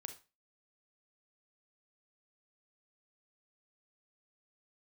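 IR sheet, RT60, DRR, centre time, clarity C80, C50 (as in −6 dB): 0.30 s, 7.0 dB, 10 ms, 17.5 dB, 11.0 dB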